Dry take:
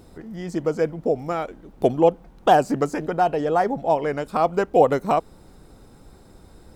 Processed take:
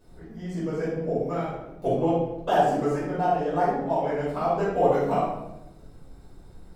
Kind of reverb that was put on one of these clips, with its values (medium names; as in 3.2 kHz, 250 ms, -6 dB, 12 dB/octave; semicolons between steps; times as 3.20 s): simulated room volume 310 m³, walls mixed, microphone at 5.3 m; trim -18 dB